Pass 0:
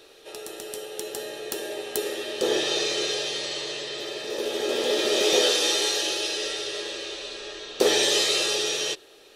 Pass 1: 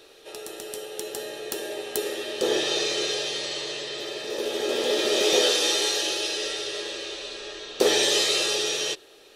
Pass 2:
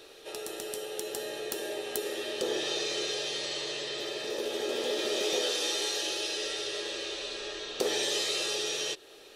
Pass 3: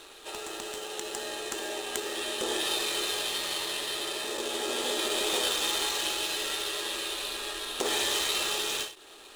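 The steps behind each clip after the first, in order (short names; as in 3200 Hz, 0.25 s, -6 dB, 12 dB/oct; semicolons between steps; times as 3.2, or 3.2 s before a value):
nothing audible
compressor 2:1, threshold -34 dBFS, peak gain reduction 10 dB
median filter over 9 samples; ten-band EQ 125 Hz -10 dB, 500 Hz -10 dB, 1000 Hz +5 dB, 2000 Hz -3 dB, 4000 Hz +4 dB, 8000 Hz +10 dB; ending taper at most 140 dB/s; gain +5.5 dB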